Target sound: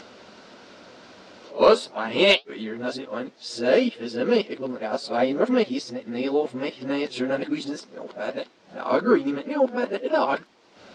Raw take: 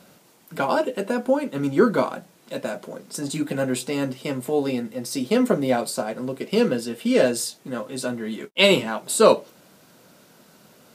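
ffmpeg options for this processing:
-af "areverse,lowpass=f=5.2k:w=0.5412,lowpass=f=5.2k:w=1.3066,equalizer=f=150:t=o:w=0.65:g=-14.5,acompressor=mode=upward:threshold=-38dB:ratio=2.5,flanger=delay=6.1:depth=5.5:regen=-66:speed=2:shape=triangular,asoftclip=type=tanh:threshold=-8dB,volume=4.5dB"

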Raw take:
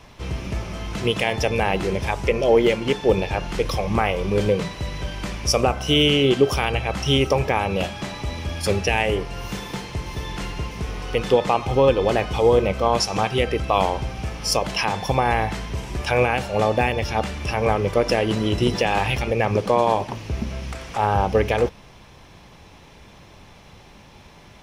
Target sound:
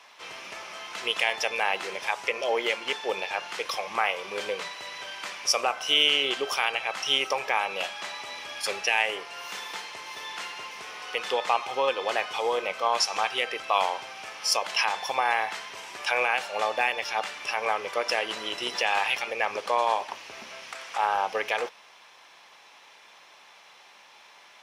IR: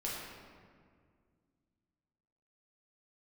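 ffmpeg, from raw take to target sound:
-af "highpass=930,highshelf=f=8.1k:g=-6"

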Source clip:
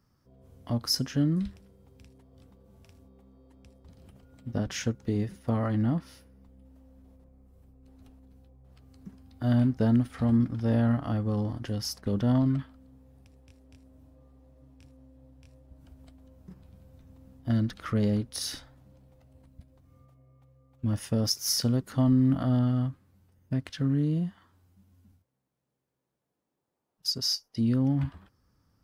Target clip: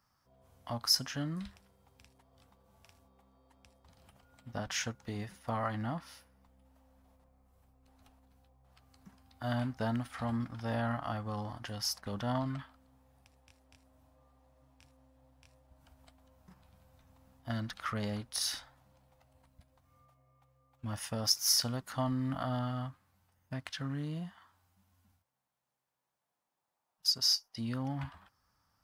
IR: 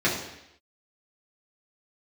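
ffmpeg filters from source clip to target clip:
-af "lowshelf=f=570:t=q:w=1.5:g=-10.5"

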